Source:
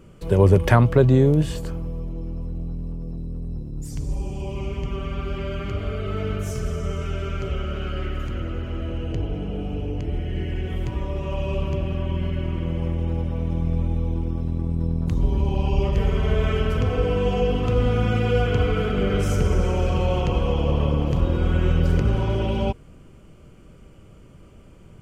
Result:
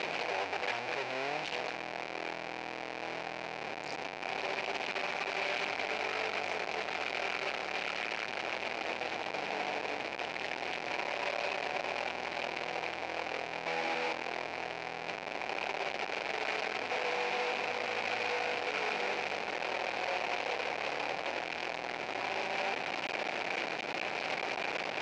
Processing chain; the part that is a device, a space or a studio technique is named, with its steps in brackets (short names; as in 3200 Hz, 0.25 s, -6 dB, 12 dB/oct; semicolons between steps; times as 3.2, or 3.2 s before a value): 13.66–14.13 HPF 550 Hz 6 dB/oct; LPF 3900 Hz; home computer beeper (infinite clipping; speaker cabinet 550–5000 Hz, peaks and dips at 750 Hz +6 dB, 1200 Hz -6 dB, 2400 Hz +9 dB, 3400 Hz -4 dB); gain -8 dB